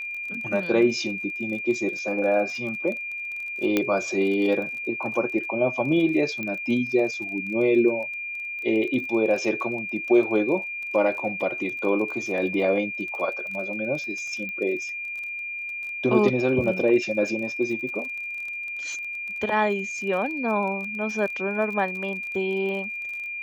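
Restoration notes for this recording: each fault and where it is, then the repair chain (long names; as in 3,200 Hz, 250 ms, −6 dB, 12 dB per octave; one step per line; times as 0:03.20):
surface crackle 28 per second −33 dBFS
whistle 2,400 Hz −30 dBFS
0:03.77: click −8 dBFS
0:06.43: click −18 dBFS
0:14.49: click −23 dBFS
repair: click removal
notch filter 2,400 Hz, Q 30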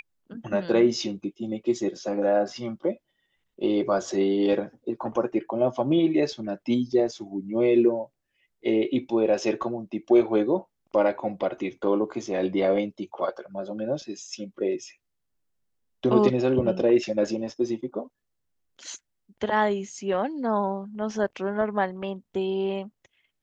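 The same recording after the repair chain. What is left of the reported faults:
none of them is left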